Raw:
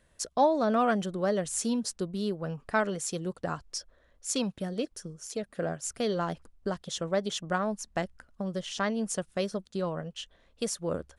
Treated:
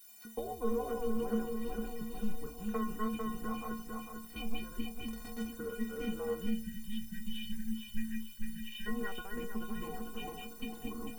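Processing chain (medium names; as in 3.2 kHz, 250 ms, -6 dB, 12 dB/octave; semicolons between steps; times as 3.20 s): backward echo that repeats 224 ms, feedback 65%, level -2 dB; compression, threshold -27 dBFS, peak gain reduction 10 dB; mistuned SSB -210 Hz 180–3200 Hz; 5.07–5.47 s: Schmitt trigger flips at -38.5 dBFS; 6.50–8.86 s: spectral selection erased 240–1500 Hz; 9.23–9.65 s: distance through air 240 m; added noise blue -52 dBFS; inharmonic resonator 220 Hz, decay 0.44 s, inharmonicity 0.03; trim +11 dB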